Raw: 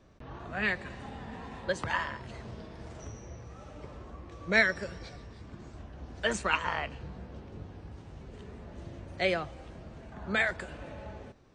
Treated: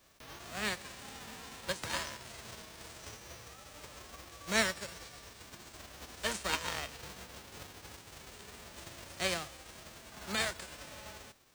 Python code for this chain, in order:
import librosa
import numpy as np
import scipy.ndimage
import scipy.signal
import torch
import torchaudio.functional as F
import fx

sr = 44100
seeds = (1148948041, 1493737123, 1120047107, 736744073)

y = fx.envelope_flatten(x, sr, power=0.3)
y = y * librosa.db_to_amplitude(-5.5)